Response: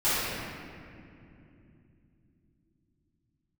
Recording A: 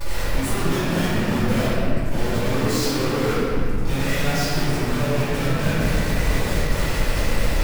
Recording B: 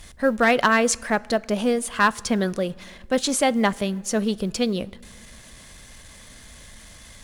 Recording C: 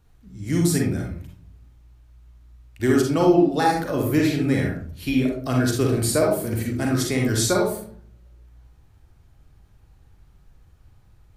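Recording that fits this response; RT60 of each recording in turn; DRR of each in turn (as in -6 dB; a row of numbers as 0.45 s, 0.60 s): A; 2.8 s, 1.9 s, 0.55 s; -17.0 dB, 20.5 dB, -1.0 dB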